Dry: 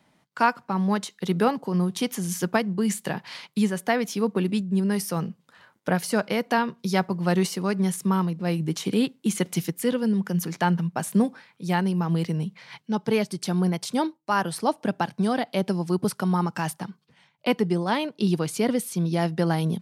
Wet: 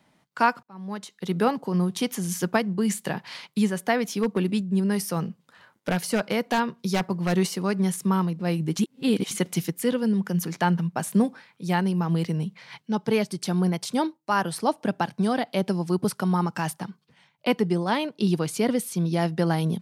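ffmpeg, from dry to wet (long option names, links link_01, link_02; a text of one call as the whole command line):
ffmpeg -i in.wav -filter_complex "[0:a]asplit=3[link_01][link_02][link_03];[link_01]afade=type=out:start_time=4.08:duration=0.02[link_04];[link_02]aeval=exprs='0.2*(abs(mod(val(0)/0.2+3,4)-2)-1)':channel_layout=same,afade=type=in:start_time=4.08:duration=0.02,afade=type=out:start_time=7.32:duration=0.02[link_05];[link_03]afade=type=in:start_time=7.32:duration=0.02[link_06];[link_04][link_05][link_06]amix=inputs=3:normalize=0,asplit=4[link_07][link_08][link_09][link_10];[link_07]atrim=end=0.63,asetpts=PTS-STARTPTS,afade=type=out:start_time=0.626:duration=0.004:curve=hsin[link_11];[link_08]atrim=start=0.63:end=8.792,asetpts=PTS-STARTPTS,afade=type=in:duration=0.89[link_12];[link_09]atrim=start=8.788:end=9.312,asetpts=PTS-STARTPTS,areverse[link_13];[link_10]atrim=start=9.308[link_14];[link_11][link_12]concat=n=2:v=0:a=1[link_15];[link_15][link_13]acrossfade=duration=0.004:curve1=hsin:curve2=hsin[link_16];[link_16][link_14]acrossfade=duration=0.004:curve1=hsin:curve2=hsin" out.wav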